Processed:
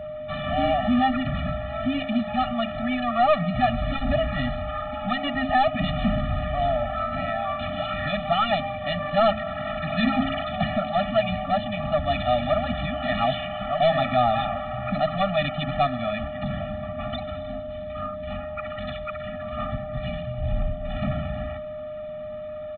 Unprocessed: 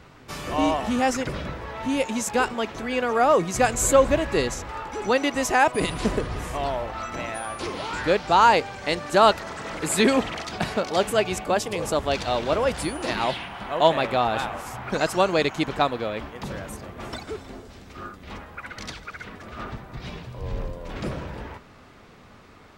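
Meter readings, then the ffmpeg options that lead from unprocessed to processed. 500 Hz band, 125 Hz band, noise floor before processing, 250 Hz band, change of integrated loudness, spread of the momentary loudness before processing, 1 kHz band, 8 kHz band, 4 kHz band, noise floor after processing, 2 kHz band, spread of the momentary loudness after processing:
−1.5 dB, +4.5 dB, −49 dBFS, +1.0 dB, −2.0 dB, 18 LU, −1.0 dB, below −40 dB, −1.5 dB, −34 dBFS, −2.5 dB, 11 LU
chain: -af "bandreject=frequency=54.03:width_type=h:width=4,bandreject=frequency=108.06:width_type=h:width=4,bandreject=frequency=162.09:width_type=h:width=4,bandreject=frequency=216.12:width_type=h:width=4,bandreject=frequency=270.15:width_type=h:width=4,aeval=exprs='val(0)+0.0126*sin(2*PI*610*n/s)':channel_layout=same,aresample=8000,asoftclip=type=tanh:threshold=-19.5dB,aresample=44100,afftfilt=real='re*eq(mod(floor(b*sr/1024/280),2),0)':imag='im*eq(mod(floor(b*sr/1024/280),2),0)':win_size=1024:overlap=0.75,volume=6.5dB"

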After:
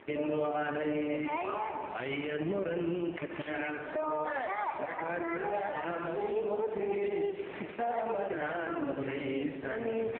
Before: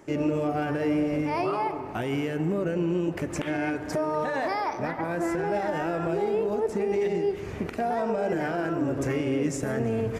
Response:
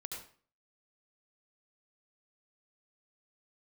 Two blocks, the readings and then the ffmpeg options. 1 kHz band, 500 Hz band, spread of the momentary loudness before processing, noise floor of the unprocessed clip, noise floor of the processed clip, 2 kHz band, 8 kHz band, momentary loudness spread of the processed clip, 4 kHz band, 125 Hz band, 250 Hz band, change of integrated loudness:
−5.0 dB, −6.0 dB, 4 LU, −36 dBFS, −42 dBFS, −3.5 dB, below −35 dB, 4 LU, −5.5 dB, −13.0 dB, −9.0 dB, −6.5 dB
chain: -filter_complex "[0:a]highpass=frequency=620:poles=1,highshelf=frequency=2100:gain=3.5,alimiter=level_in=6dB:limit=-24dB:level=0:latency=1:release=405,volume=-6dB,aecho=1:1:85|170|255|340|425|510:0.282|0.147|0.0762|0.0396|0.0206|0.0107,asplit=2[link_01][link_02];[1:a]atrim=start_sample=2205,highshelf=frequency=2800:gain=-7.5[link_03];[link_02][link_03]afir=irnorm=-1:irlink=0,volume=-7dB[link_04];[link_01][link_04]amix=inputs=2:normalize=0,volume=4.5dB" -ar 8000 -c:a libopencore_amrnb -b:a 4750

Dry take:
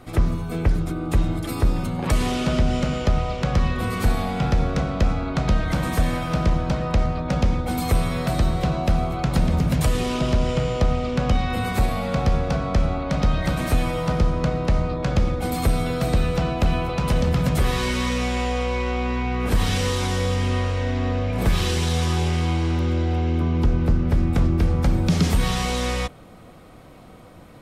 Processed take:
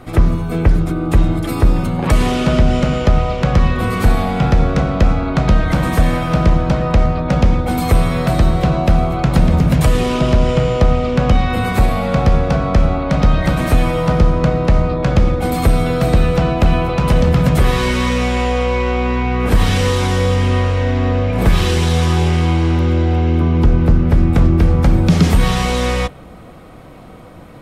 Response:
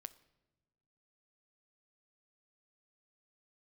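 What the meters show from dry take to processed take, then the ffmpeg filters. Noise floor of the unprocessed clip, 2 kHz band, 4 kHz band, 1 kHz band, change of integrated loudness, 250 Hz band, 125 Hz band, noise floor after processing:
−44 dBFS, +6.5 dB, +4.5 dB, +7.0 dB, +7.5 dB, +7.5 dB, +7.5 dB, −36 dBFS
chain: -filter_complex "[0:a]asplit=2[link_01][link_02];[1:a]atrim=start_sample=2205,asetrate=52920,aresample=44100,lowpass=3700[link_03];[link_02][link_03]afir=irnorm=-1:irlink=0,volume=1.5dB[link_04];[link_01][link_04]amix=inputs=2:normalize=0,volume=4dB"

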